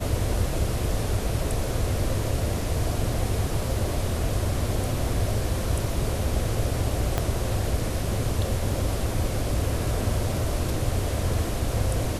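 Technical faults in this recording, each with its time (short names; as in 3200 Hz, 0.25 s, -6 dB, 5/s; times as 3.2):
7.18 pop -10 dBFS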